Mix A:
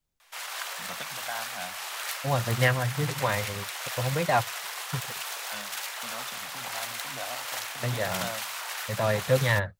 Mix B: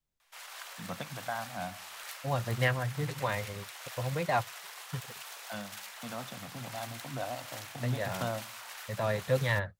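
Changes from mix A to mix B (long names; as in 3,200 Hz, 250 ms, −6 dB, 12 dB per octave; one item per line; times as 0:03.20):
first voice: add spectral tilt −3 dB per octave
second voice −5.0 dB
background −10.0 dB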